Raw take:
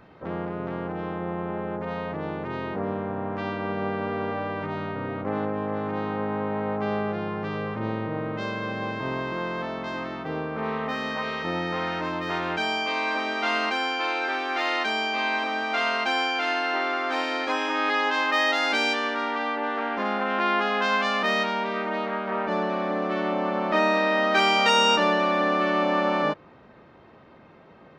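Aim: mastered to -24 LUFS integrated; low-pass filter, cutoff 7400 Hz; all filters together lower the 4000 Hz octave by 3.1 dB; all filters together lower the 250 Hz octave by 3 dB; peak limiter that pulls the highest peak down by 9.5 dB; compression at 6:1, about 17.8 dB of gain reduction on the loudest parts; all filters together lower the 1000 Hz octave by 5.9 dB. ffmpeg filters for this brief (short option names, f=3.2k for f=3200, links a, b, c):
-af "lowpass=7.4k,equalizer=f=250:t=o:g=-3.5,equalizer=f=1k:t=o:g=-7.5,equalizer=f=4k:t=o:g=-3.5,acompressor=threshold=-40dB:ratio=6,volume=23dB,alimiter=limit=-14.5dB:level=0:latency=1"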